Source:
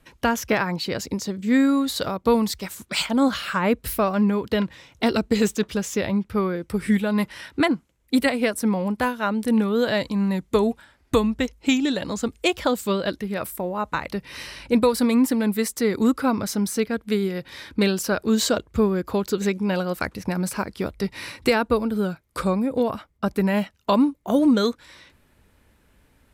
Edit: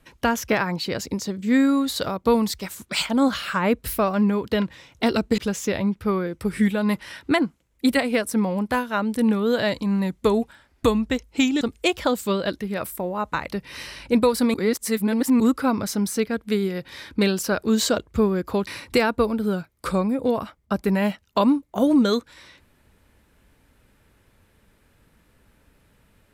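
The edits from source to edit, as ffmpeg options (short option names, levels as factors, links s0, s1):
-filter_complex "[0:a]asplit=6[s0][s1][s2][s3][s4][s5];[s0]atrim=end=5.382[s6];[s1]atrim=start=5.668:end=11.902[s7];[s2]atrim=start=12.208:end=15.142[s8];[s3]atrim=start=15.138:end=16.002,asetpts=PTS-STARTPTS,areverse[s9];[s4]atrim=start=15.998:end=19.272[s10];[s5]atrim=start=21.188[s11];[s6][s7]acrossfade=d=0.004:c1=hsin:c2=hsin[s12];[s12][s8]acrossfade=d=0.004:c1=hsin:c2=hsin[s13];[s13][s9]acrossfade=d=0.004:c1=hsin:c2=hsin[s14];[s14][s10]acrossfade=d=0.004:c1=hsin:c2=hsin[s15];[s15][s11]acrossfade=d=0.004:c1=hsin:c2=hsin"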